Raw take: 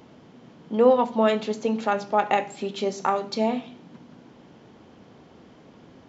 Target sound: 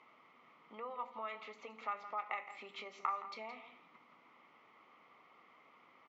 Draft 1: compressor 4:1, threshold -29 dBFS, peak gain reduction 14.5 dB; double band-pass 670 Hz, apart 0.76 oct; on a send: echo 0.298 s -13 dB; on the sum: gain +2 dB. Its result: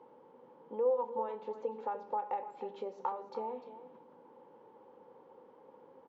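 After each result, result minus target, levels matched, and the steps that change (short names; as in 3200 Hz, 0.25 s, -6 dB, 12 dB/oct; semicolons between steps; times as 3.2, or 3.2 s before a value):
2000 Hz band -18.0 dB; echo 0.13 s late
change: double band-pass 1600 Hz, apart 0.76 oct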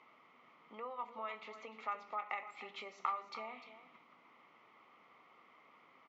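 echo 0.13 s late
change: echo 0.168 s -13 dB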